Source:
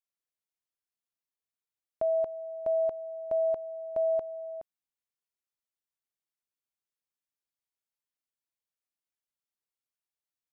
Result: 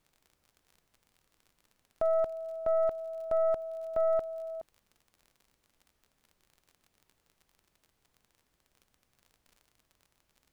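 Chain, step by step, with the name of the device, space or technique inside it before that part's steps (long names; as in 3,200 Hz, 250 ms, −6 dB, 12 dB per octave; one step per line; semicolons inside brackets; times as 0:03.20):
record under a worn stylus (stylus tracing distortion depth 0.081 ms; surface crackle 39 per second −47 dBFS; pink noise bed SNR 40 dB)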